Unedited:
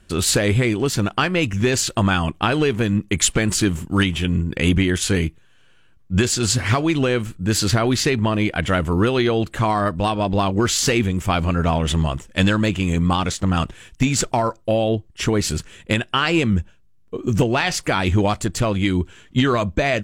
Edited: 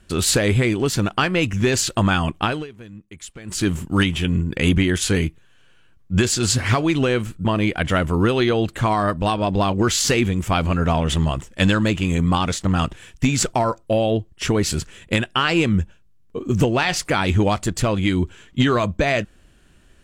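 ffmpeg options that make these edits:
-filter_complex "[0:a]asplit=4[s0][s1][s2][s3];[s0]atrim=end=2.67,asetpts=PTS-STARTPTS,afade=t=out:st=2.41:d=0.26:silence=0.1[s4];[s1]atrim=start=2.67:end=3.44,asetpts=PTS-STARTPTS,volume=0.1[s5];[s2]atrim=start=3.44:end=7.452,asetpts=PTS-STARTPTS,afade=t=in:d=0.26:silence=0.1[s6];[s3]atrim=start=8.228[s7];[s4][s5][s6]concat=n=3:v=0:a=1[s8];[s8][s7]acrossfade=d=0.004:c1=hsin:c2=hsin"

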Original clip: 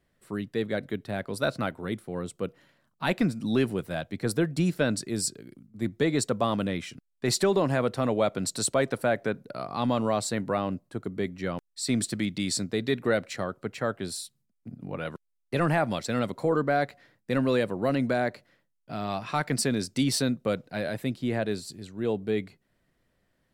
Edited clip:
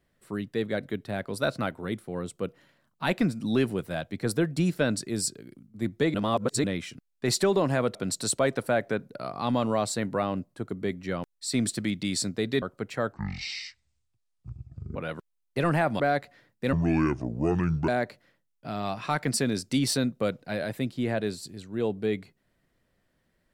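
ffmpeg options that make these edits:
-filter_complex "[0:a]asplit=10[s0][s1][s2][s3][s4][s5][s6][s7][s8][s9];[s0]atrim=end=6.142[s10];[s1]atrim=start=6.138:end=6.642,asetpts=PTS-STARTPTS,areverse[s11];[s2]atrim=start=6.638:end=7.952[s12];[s3]atrim=start=8.298:end=12.972[s13];[s4]atrim=start=13.458:end=13.974[s14];[s5]atrim=start=13.97:end=14.92,asetpts=PTS-STARTPTS,asetrate=22932,aresample=44100,atrim=end_sample=80567,asetpts=PTS-STARTPTS[s15];[s6]atrim=start=14.916:end=15.962[s16];[s7]atrim=start=16.658:end=17.394[s17];[s8]atrim=start=17.39:end=18.13,asetpts=PTS-STARTPTS,asetrate=28224,aresample=44100[s18];[s9]atrim=start=18.126[s19];[s10][s11]acrossfade=d=0.004:c1=hsin:c2=hsin[s20];[s20][s12]acrossfade=d=0.004:c1=hsin:c2=hsin[s21];[s21][s13]acrossfade=d=0.004:c1=hsin:c2=hsin[s22];[s22][s14]acrossfade=d=0.004:c1=hsin:c2=hsin[s23];[s23][s15]acrossfade=d=0.004:c1=hsin:c2=hsin[s24];[s24][s16]acrossfade=d=0.004:c1=hsin:c2=hsin[s25];[s25][s17]acrossfade=d=0.004:c1=hsin:c2=hsin[s26];[s26][s18]acrossfade=d=0.004:c1=hsin:c2=hsin[s27];[s27][s19]acrossfade=d=0.004:c1=hsin:c2=hsin"

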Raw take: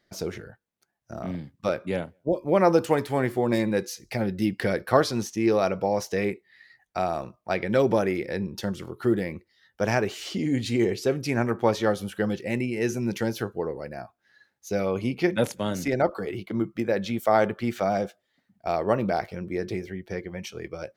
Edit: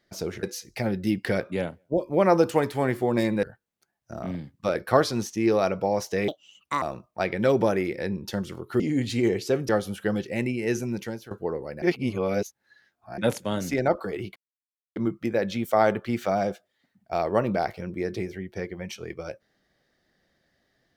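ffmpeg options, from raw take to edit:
-filter_complex "[0:a]asplit=13[s0][s1][s2][s3][s4][s5][s6][s7][s8][s9][s10][s11][s12];[s0]atrim=end=0.432[s13];[s1]atrim=start=3.778:end=4.752[s14];[s2]atrim=start=1.748:end=3.782[s15];[s3]atrim=start=0.428:end=1.752[s16];[s4]atrim=start=4.748:end=6.284[s17];[s5]atrim=start=6.28:end=7.12,asetpts=PTS-STARTPTS,asetrate=68796,aresample=44100,atrim=end_sample=23746,asetpts=PTS-STARTPTS[s18];[s6]atrim=start=7.116:end=9.102[s19];[s7]atrim=start=10.358:end=11.252[s20];[s8]atrim=start=11.828:end=13.45,asetpts=PTS-STARTPTS,afade=t=out:st=1.072:d=0.55:silence=0.141254[s21];[s9]atrim=start=13.45:end=13.962,asetpts=PTS-STARTPTS,afade=t=in:d=0.004:c=hsin:silence=0.141254[s22];[s10]atrim=start=13.958:end=15.322,asetpts=PTS-STARTPTS,areverse[s23];[s11]atrim=start=15.318:end=16.5,asetpts=PTS-STARTPTS,afade=t=out:st=1.178:d=0.004:c=hsin,apad=pad_dur=0.6[s24];[s12]atrim=start=16.5,asetpts=PTS-STARTPTS,afade=t=in:d=0.004:c=hsin[s25];[s13][s14]acrossfade=d=0.004:c1=hsin:c2=hsin[s26];[s26][s15]acrossfade=d=0.004:c1=hsin:c2=hsin[s27];[s27][s16]acrossfade=d=0.004:c1=hsin:c2=hsin[s28];[s28][s17]acrossfade=d=0.004:c1=hsin:c2=hsin[s29];[s29][s18]acrossfade=d=0.004:c1=hsin:c2=hsin[s30];[s30][s19]acrossfade=d=0.004:c1=hsin:c2=hsin[s31];[s31][s20]acrossfade=d=0.004:c1=hsin:c2=hsin[s32];[s21][s22]concat=n=2:v=0:a=1[s33];[s32][s33]acrossfade=d=0.004:c1=hsin:c2=hsin[s34];[s34][s23]acrossfade=d=0.004:c1=hsin:c2=hsin[s35];[s24][s25]concat=n=2:v=0:a=1[s36];[s35][s36]acrossfade=d=0.004:c1=hsin:c2=hsin"

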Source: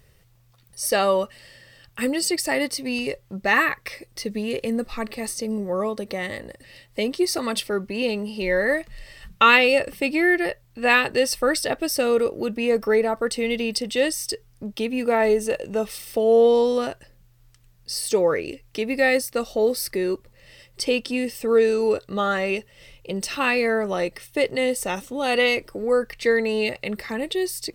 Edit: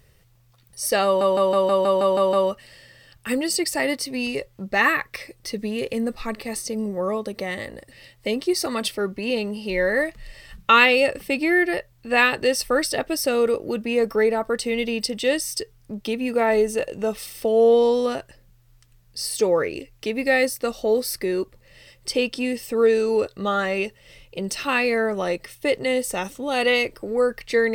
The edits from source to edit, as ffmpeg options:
-filter_complex "[0:a]asplit=9[s0][s1][s2][s3][s4][s5][s6][s7][s8];[s0]atrim=end=1.212[s9];[s1]atrim=start=1.048:end=1.212[s10];[s2]atrim=start=1.048:end=1.212[s11];[s3]atrim=start=1.048:end=1.212[s12];[s4]atrim=start=1.048:end=1.212[s13];[s5]atrim=start=1.048:end=1.212[s14];[s6]atrim=start=1.048:end=1.212[s15];[s7]atrim=start=1.048:end=1.212[s16];[s8]atrim=start=1.048[s17];[s9][s10]acrossfade=d=0.004:c1=hsin:c2=hsin[s18];[s18][s11]acrossfade=d=0.004:c1=hsin:c2=hsin[s19];[s19][s12]acrossfade=d=0.004:c1=hsin:c2=hsin[s20];[s20][s13]acrossfade=d=0.004:c1=hsin:c2=hsin[s21];[s21][s14]acrossfade=d=0.004:c1=hsin:c2=hsin[s22];[s22][s15]acrossfade=d=0.004:c1=hsin:c2=hsin[s23];[s23][s16]acrossfade=d=0.004:c1=hsin:c2=hsin[s24];[s24][s17]acrossfade=d=0.004:c1=hsin:c2=hsin"

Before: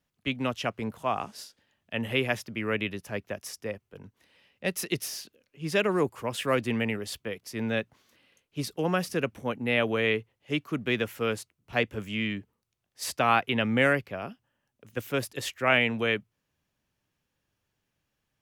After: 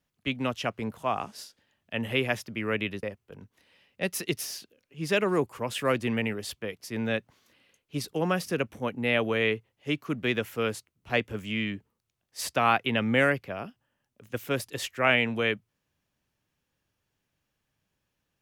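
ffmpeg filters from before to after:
-filter_complex "[0:a]asplit=2[s0][s1];[s0]atrim=end=3.032[s2];[s1]atrim=start=3.658[s3];[s2][s3]acrossfade=d=0.004:c1=hsin:c2=hsin"

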